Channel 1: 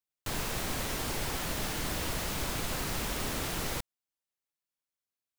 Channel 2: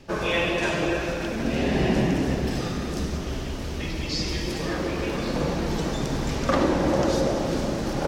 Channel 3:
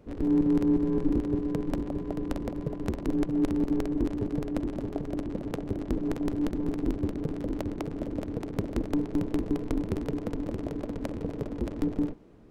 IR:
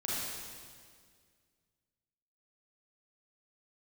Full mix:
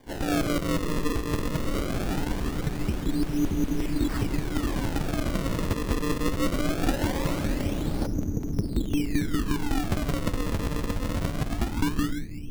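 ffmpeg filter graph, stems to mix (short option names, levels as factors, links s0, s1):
-filter_complex "[0:a]adelay=1000,volume=0.266[s0];[1:a]asoftclip=type=hard:threshold=0.106,volume=0.376,asplit=2[s1][s2];[s2]volume=0.15[s3];[2:a]lowpass=f=1800:p=1,asubboost=boost=9:cutoff=190,volume=0.708,asplit=2[s4][s5];[s5]volume=0.178[s6];[3:a]atrim=start_sample=2205[s7];[s3][s6]amix=inputs=2:normalize=0[s8];[s8][s7]afir=irnorm=-1:irlink=0[s9];[s0][s1][s4][s9]amix=inputs=4:normalize=0,acrossover=split=270[s10][s11];[s10]acompressor=threshold=0.0562:ratio=6[s12];[s12][s11]amix=inputs=2:normalize=0,acrusher=samples=33:mix=1:aa=0.000001:lfo=1:lforange=52.8:lforate=0.21"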